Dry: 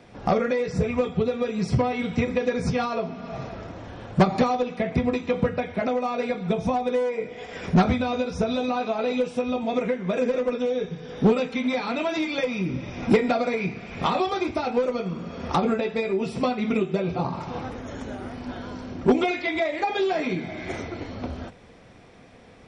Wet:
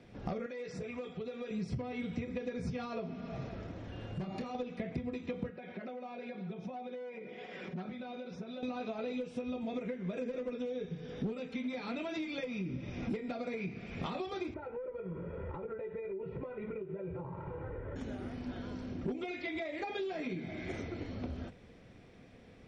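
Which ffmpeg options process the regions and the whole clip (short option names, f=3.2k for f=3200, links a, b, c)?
-filter_complex "[0:a]asettb=1/sr,asplit=3[a][b][c];[a]atrim=end=0.464[d];[b]atrim=start=0.46:end=1.51,asetpts=PTS-STARTPTS,afade=t=in:d=0.004:c=qsin,afade=t=out:st=1.046:d=0.004:c=qsin,highpass=f=500:p=1,acompressor=threshold=-33dB:ratio=2:attack=3.2:release=140:knee=1:detection=peak[e];[c]atrim=start=1.506[f];[d][e]acrossfade=d=0.004:c1=hsin:c2=qsin[g];[g][f]acrossfade=d=0.004:c1=qsin:c2=hsin,asettb=1/sr,asplit=3[h][i][j];[h]atrim=end=3.924[k];[i]atrim=start=3.92:end=4.55,asetpts=PTS-STARTPTS,afade=t=in:d=0.004:c=qsin,afade=t=out:st=0.626:d=0.004:c=qsin,acompressor=threshold=-29dB:ratio=5:attack=3.2:release=140:knee=1:detection=peak,aeval=exprs='val(0)+0.00447*sin(2*PI*2800*n/s)':c=same,asplit=2[l][m];[m]adelay=27,volume=-7dB[n];[l][n]amix=inputs=2:normalize=0,atrim=end_sample=27783[o];[j]atrim=start=4.546[p];[k][o]acrossfade=d=0.004:c1=hsin:c2=qsin[q];[q][p]acrossfade=d=0.004:c1=qsin:c2=hsin,asettb=1/sr,asplit=3[r][s][t];[r]atrim=end=5.504[u];[s]atrim=start=5.5:end=8.63,asetpts=PTS-STARTPTS,afade=t=in:d=0.004:c=qsin,afade=t=out:st=3.126:d=0.004:c=qsin,acompressor=threshold=-32dB:ratio=6:attack=3.2:release=140:knee=1:detection=peak,highpass=210,lowpass=4.2k,aecho=1:1:5.4:0.53,atrim=end_sample=138033[v];[t]atrim=start=8.626[w];[u][v]acrossfade=d=0.004:c1=hsin:c2=qsin[x];[x][w]acrossfade=d=0.004:c1=qsin:c2=hsin,asettb=1/sr,asplit=3[y][z][aa];[y]atrim=end=14.544[ab];[z]atrim=start=14.54:end=17.96,asetpts=PTS-STARTPTS,afade=t=in:d=0.004:c=qsin,afade=t=out:st=3.416:d=0.004:c=qsin,lowpass=f=1.9k:w=0.5412,lowpass=f=1.9k:w=1.3066,aecho=1:1:2.1:0.88,atrim=end_sample=150822,acompressor=threshold=-30dB:ratio=8:attack=3.2:release=140:knee=1:detection=peak[ac];[aa]atrim=start=17.956[ad];[ab][ac]acrossfade=d=0.004:c1=hsin:c2=qsin[ae];[ae][ad]acrossfade=d=0.004:c1=qsin:c2=hsin,equalizer=f=940:t=o:w=1.5:g=-8,acompressor=threshold=-30dB:ratio=6,highshelf=f=4.4k:g=-9,volume=-4.5dB"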